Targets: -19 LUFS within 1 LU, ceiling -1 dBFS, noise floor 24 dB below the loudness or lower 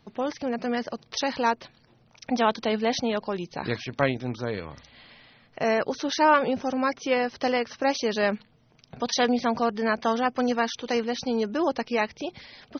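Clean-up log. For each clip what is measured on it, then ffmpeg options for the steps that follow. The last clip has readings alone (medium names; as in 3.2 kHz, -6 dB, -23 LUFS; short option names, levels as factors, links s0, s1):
loudness -26.5 LUFS; peak level -7.0 dBFS; loudness target -19.0 LUFS
-> -af "volume=2.37,alimiter=limit=0.891:level=0:latency=1"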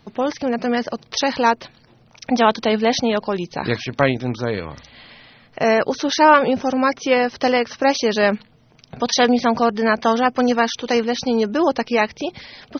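loudness -19.0 LUFS; peak level -1.0 dBFS; noise floor -53 dBFS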